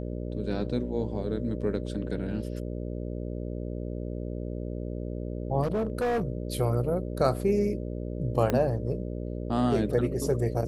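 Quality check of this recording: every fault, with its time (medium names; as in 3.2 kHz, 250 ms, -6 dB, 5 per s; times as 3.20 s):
buzz 60 Hz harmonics 10 -34 dBFS
5.62–6.23 s: clipped -24 dBFS
8.50 s: pop -13 dBFS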